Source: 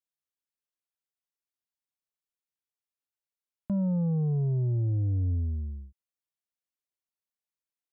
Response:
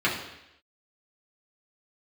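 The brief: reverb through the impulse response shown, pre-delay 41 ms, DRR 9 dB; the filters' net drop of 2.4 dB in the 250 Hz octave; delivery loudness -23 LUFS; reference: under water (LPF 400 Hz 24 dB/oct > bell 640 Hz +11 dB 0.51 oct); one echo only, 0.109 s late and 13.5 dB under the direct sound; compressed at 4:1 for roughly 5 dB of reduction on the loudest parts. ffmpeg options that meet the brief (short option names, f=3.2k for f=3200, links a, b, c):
-filter_complex "[0:a]equalizer=f=250:t=o:g=-5,acompressor=threshold=-32dB:ratio=4,aecho=1:1:109:0.211,asplit=2[a][b];[1:a]atrim=start_sample=2205,adelay=41[c];[b][c]afir=irnorm=-1:irlink=0,volume=-23.5dB[d];[a][d]amix=inputs=2:normalize=0,lowpass=f=400:w=0.5412,lowpass=f=400:w=1.3066,equalizer=f=640:t=o:w=0.51:g=11,volume=11dB"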